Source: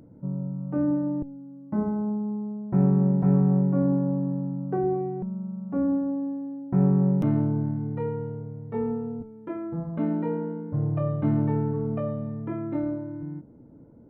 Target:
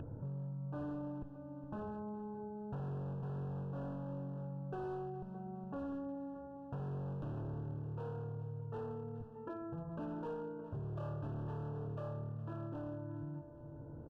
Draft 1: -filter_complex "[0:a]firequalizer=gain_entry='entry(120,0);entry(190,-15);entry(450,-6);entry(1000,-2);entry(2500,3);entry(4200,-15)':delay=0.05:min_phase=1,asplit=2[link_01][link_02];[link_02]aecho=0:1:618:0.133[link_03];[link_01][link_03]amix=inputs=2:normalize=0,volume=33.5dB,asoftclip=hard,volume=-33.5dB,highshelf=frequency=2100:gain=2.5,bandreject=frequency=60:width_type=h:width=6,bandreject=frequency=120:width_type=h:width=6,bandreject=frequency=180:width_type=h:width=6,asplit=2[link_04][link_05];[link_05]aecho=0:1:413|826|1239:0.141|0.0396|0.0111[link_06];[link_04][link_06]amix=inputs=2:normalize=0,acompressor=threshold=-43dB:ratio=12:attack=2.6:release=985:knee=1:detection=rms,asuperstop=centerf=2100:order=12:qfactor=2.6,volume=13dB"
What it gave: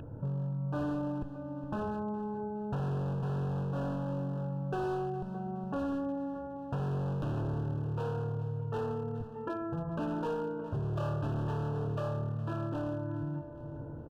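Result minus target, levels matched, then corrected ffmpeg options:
downward compressor: peak gain reduction −8 dB; 2,000 Hz band +3.5 dB
-filter_complex "[0:a]firequalizer=gain_entry='entry(120,0);entry(190,-15);entry(450,-6);entry(1000,-2);entry(2500,3);entry(4200,-15)':delay=0.05:min_phase=1,asplit=2[link_01][link_02];[link_02]aecho=0:1:618:0.133[link_03];[link_01][link_03]amix=inputs=2:normalize=0,volume=33.5dB,asoftclip=hard,volume=-33.5dB,highshelf=frequency=2100:gain=-8,bandreject=frequency=60:width_type=h:width=6,bandreject=frequency=120:width_type=h:width=6,bandreject=frequency=180:width_type=h:width=6,asplit=2[link_04][link_05];[link_05]aecho=0:1:413|826|1239:0.141|0.0396|0.0111[link_06];[link_04][link_06]amix=inputs=2:normalize=0,acompressor=threshold=-52dB:ratio=12:attack=2.6:release=985:knee=1:detection=rms,asuperstop=centerf=2100:order=12:qfactor=2.6,volume=13dB"

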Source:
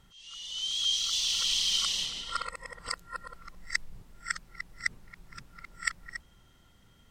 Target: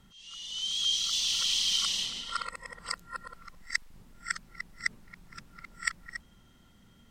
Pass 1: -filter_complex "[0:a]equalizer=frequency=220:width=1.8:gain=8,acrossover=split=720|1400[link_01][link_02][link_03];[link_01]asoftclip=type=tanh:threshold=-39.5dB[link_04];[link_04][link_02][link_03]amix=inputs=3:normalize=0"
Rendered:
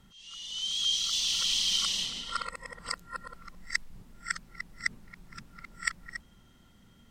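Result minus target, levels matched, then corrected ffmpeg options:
soft clipping: distortion −8 dB
-filter_complex "[0:a]equalizer=frequency=220:width=1.8:gain=8,acrossover=split=720|1400[link_01][link_02][link_03];[link_01]asoftclip=type=tanh:threshold=-48.5dB[link_04];[link_04][link_02][link_03]amix=inputs=3:normalize=0"

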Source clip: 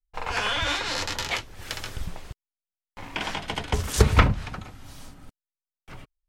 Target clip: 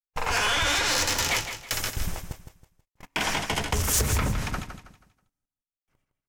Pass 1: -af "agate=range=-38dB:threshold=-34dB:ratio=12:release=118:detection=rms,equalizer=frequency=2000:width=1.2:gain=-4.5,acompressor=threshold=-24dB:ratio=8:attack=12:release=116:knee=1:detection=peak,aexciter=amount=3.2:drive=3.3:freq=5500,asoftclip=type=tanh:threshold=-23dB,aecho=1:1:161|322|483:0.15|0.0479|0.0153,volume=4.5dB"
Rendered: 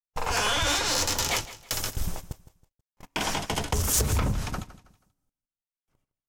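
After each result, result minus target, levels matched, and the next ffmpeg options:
echo-to-direct −7 dB; 2,000 Hz band −3.0 dB
-af "agate=range=-38dB:threshold=-34dB:ratio=12:release=118:detection=rms,equalizer=frequency=2000:width=1.2:gain=-4.5,acompressor=threshold=-24dB:ratio=8:attack=12:release=116:knee=1:detection=peak,aexciter=amount=3.2:drive=3.3:freq=5500,asoftclip=type=tanh:threshold=-23dB,aecho=1:1:161|322|483|644:0.335|0.107|0.0343|0.011,volume=4.5dB"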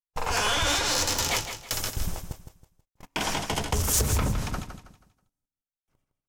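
2,000 Hz band −3.0 dB
-af "agate=range=-38dB:threshold=-34dB:ratio=12:release=118:detection=rms,equalizer=frequency=2000:width=1.2:gain=2,acompressor=threshold=-24dB:ratio=8:attack=12:release=116:knee=1:detection=peak,aexciter=amount=3.2:drive=3.3:freq=5500,asoftclip=type=tanh:threshold=-23dB,aecho=1:1:161|322|483|644:0.335|0.107|0.0343|0.011,volume=4.5dB"

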